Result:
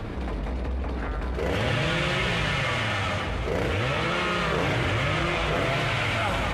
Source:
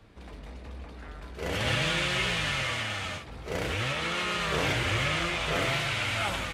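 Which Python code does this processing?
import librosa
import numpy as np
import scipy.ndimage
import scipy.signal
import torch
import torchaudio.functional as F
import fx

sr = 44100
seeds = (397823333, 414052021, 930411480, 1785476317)

y = fx.high_shelf(x, sr, hz=2700.0, db=-10.5)
y = fx.echo_alternate(y, sr, ms=191, hz=1300.0, feedback_pct=60, wet_db=-9)
y = fx.env_flatten(y, sr, amount_pct=70)
y = y * 10.0 ** (3.0 / 20.0)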